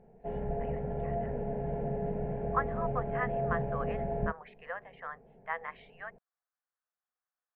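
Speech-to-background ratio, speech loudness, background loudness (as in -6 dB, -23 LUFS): -5.0 dB, -40.0 LUFS, -35.0 LUFS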